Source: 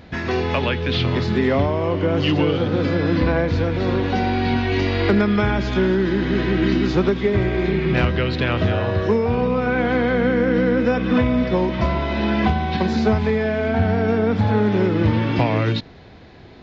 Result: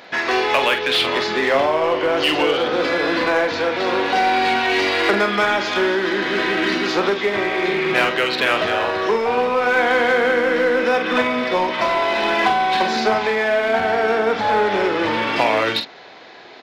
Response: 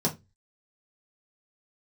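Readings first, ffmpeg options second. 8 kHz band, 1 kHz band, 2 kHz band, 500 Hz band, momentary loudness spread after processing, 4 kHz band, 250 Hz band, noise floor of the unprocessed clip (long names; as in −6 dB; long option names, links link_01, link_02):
can't be measured, +7.5 dB, +7.5 dB, +2.0 dB, 3 LU, +8.0 dB, −6.0 dB, −42 dBFS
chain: -filter_complex "[0:a]highpass=590,asplit=2[link_01][link_02];[link_02]aeval=exprs='0.0562*(abs(mod(val(0)/0.0562+3,4)-2)-1)':channel_layout=same,volume=-10.5dB[link_03];[link_01][link_03]amix=inputs=2:normalize=0,asplit=2[link_04][link_05];[link_05]adelay=45,volume=-8dB[link_06];[link_04][link_06]amix=inputs=2:normalize=0,volume=6dB"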